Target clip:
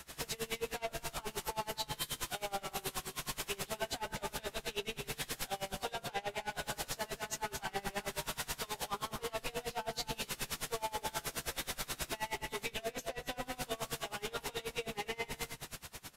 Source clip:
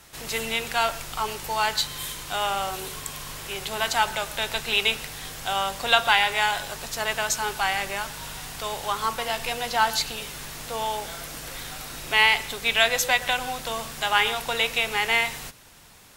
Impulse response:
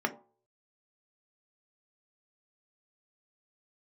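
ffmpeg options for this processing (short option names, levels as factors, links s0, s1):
-filter_complex "[0:a]acrossover=split=570[s0][s1];[s1]acompressor=threshold=0.0251:ratio=6[s2];[s0][s2]amix=inputs=2:normalize=0,alimiter=level_in=1.12:limit=0.0631:level=0:latency=1:release=205,volume=0.891,asoftclip=type=tanh:threshold=0.0126,asplit=2[s3][s4];[s4]adelay=15,volume=0.794[s5];[s3][s5]amix=inputs=2:normalize=0,asplit=2[s6][s7];[s7]aecho=0:1:249:0.473[s8];[s6][s8]amix=inputs=2:normalize=0,aresample=32000,aresample=44100,aeval=exprs='val(0)*pow(10,-25*(0.5-0.5*cos(2*PI*9.4*n/s))/20)':c=same,volume=1.68"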